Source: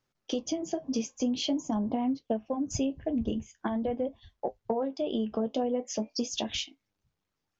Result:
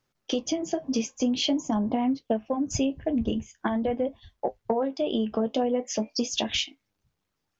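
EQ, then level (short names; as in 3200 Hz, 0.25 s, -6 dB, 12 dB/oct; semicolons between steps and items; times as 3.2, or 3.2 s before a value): dynamic EQ 2000 Hz, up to +5 dB, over -49 dBFS, Q 0.89; +3.5 dB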